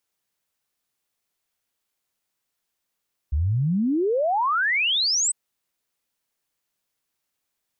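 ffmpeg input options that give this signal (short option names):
-f lavfi -i "aevalsrc='0.112*clip(min(t,2-t)/0.01,0,1)*sin(2*PI*67*2/log(8400/67)*(exp(log(8400/67)*t/2)-1))':d=2:s=44100"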